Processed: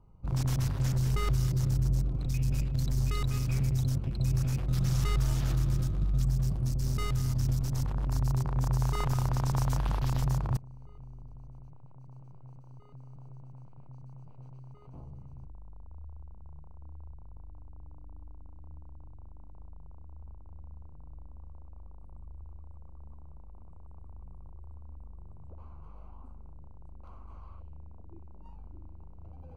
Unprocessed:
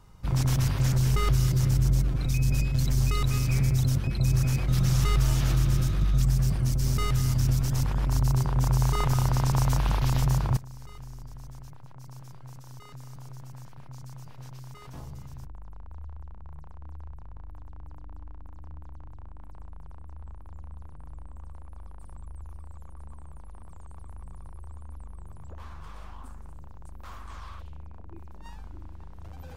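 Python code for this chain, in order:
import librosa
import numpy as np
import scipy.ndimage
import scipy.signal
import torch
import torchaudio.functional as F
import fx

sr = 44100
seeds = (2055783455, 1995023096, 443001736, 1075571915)

y = fx.wiener(x, sr, points=25)
y = y * librosa.db_to_amplitude(-4.5)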